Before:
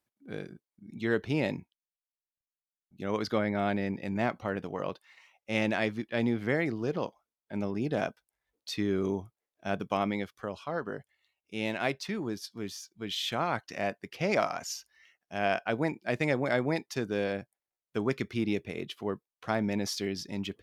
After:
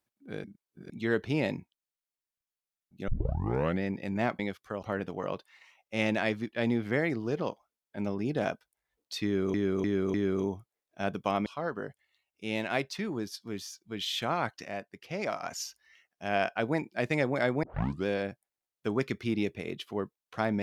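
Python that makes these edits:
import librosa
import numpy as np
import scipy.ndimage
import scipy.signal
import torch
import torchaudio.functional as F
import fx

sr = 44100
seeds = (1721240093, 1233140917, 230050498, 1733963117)

y = fx.edit(x, sr, fx.reverse_span(start_s=0.44, length_s=0.46),
    fx.tape_start(start_s=3.08, length_s=0.74),
    fx.repeat(start_s=8.8, length_s=0.3, count=4),
    fx.move(start_s=10.12, length_s=0.44, to_s=4.39),
    fx.clip_gain(start_s=13.74, length_s=0.79, db=-6.0),
    fx.tape_start(start_s=16.73, length_s=0.43), tone=tone)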